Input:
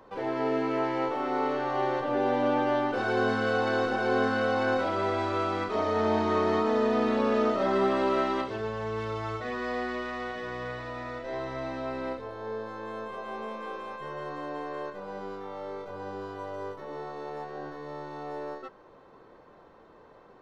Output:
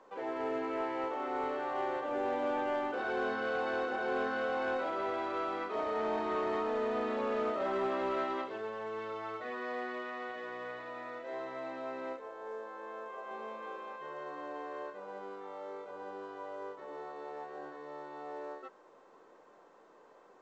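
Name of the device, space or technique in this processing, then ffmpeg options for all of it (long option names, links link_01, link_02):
telephone: -filter_complex "[0:a]asettb=1/sr,asplit=3[link_01][link_02][link_03];[link_01]atrim=end=12.164[link_04];[link_02]atrim=start=12.16:end=13.31,asetpts=PTS-STARTPTS,afade=type=in:duration=0.004:curve=qsin,afade=type=out:start_time=1.146:duration=0.004:curve=qsin,bass=frequency=250:gain=-10,treble=frequency=4000:gain=-10[link_05];[link_03]atrim=start=13.306[link_06];[link_04][link_05]acrossfade=duration=0.004:curve1=hsin:curve2=qsin[link_07];[link_07][link_06]acrossfade=duration=0.004:curve1=qsin:curve2=hsin,highpass=310,lowpass=3300,asoftclip=type=tanh:threshold=-20.5dB,volume=-5dB" -ar 16000 -c:a pcm_mulaw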